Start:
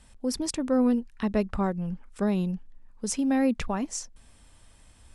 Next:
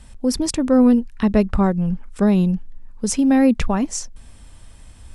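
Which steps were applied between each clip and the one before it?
bass shelf 210 Hz +6.5 dB; trim +7 dB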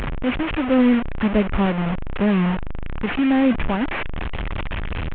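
one-bit delta coder 16 kbps, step -16 dBFS; trim -2.5 dB

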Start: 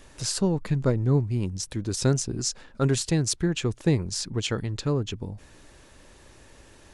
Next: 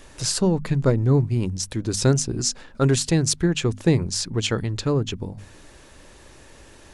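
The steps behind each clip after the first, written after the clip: hum notches 50/100/150/200/250 Hz; trim +4.5 dB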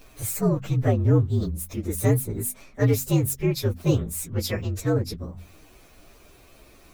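frequency axis rescaled in octaves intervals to 118%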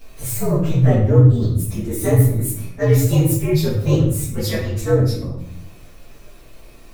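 simulated room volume 150 m³, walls mixed, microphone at 1.6 m; trim -1 dB

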